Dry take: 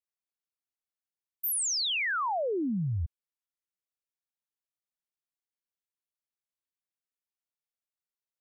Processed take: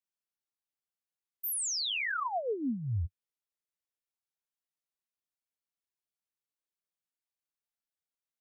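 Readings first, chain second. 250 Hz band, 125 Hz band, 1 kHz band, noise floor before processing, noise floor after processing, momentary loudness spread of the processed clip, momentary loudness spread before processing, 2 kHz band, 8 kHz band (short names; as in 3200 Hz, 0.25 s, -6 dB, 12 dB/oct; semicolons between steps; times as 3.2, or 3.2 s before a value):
-3.5 dB, -2.5 dB, -3.5 dB, under -85 dBFS, under -85 dBFS, 7 LU, 8 LU, -3.5 dB, -3.5 dB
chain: flange 0.44 Hz, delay 4.9 ms, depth 8 ms, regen +22%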